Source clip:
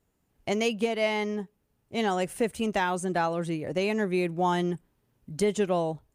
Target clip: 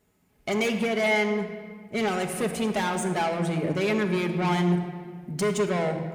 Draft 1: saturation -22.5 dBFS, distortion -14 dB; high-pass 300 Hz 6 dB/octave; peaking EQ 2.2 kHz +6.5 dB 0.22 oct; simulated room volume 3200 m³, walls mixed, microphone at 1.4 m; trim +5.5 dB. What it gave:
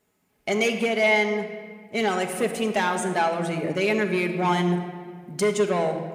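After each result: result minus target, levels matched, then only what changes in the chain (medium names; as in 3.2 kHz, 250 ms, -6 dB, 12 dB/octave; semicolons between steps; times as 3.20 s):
saturation: distortion -7 dB; 125 Hz band -4.5 dB
change: saturation -30 dBFS, distortion -8 dB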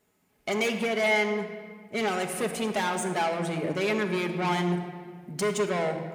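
125 Hz band -3.5 dB
change: high-pass 77 Hz 6 dB/octave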